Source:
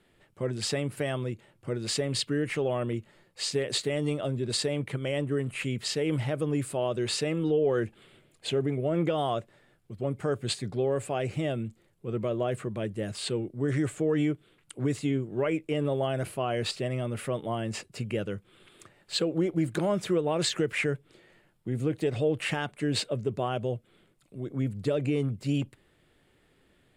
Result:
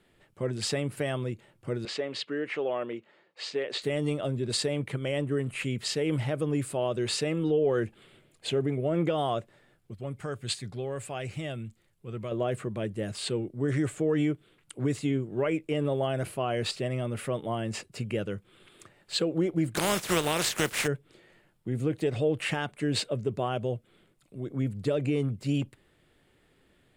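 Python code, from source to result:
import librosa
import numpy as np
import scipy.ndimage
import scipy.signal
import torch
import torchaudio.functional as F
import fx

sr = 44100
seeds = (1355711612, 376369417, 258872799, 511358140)

y = fx.bandpass_edges(x, sr, low_hz=350.0, high_hz=3600.0, at=(1.85, 3.82))
y = fx.peak_eq(y, sr, hz=380.0, db=-8.0, octaves=2.8, at=(9.94, 12.32))
y = fx.spec_flatten(y, sr, power=0.43, at=(19.75, 20.86), fade=0.02)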